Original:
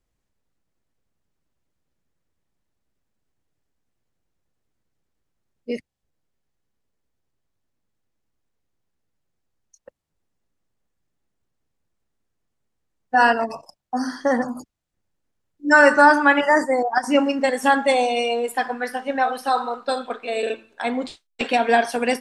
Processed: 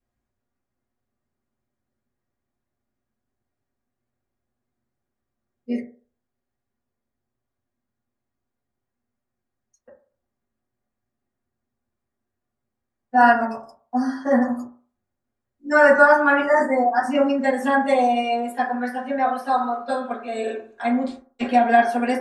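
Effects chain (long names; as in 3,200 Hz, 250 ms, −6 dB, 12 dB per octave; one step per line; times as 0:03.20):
0:20.26–0:21.01: parametric band 6,800 Hz +8 dB 0.3 octaves
convolution reverb RT60 0.45 s, pre-delay 4 ms, DRR −9 dB
level −11 dB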